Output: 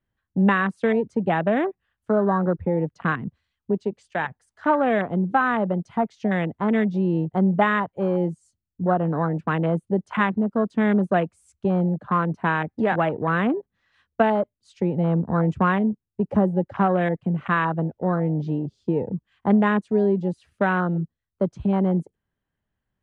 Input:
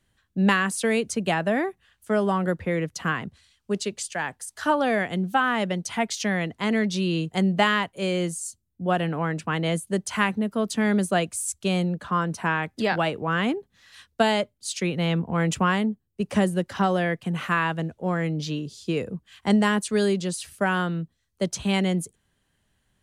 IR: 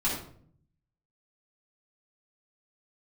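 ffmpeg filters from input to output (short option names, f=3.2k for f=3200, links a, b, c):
-filter_complex "[0:a]lowpass=1.5k,aemphasis=mode=production:type=75kf,afwtdn=0.0316,asplit=2[a][b];[b]acompressor=threshold=-31dB:ratio=6,volume=1.5dB[c];[a][c]amix=inputs=2:normalize=0"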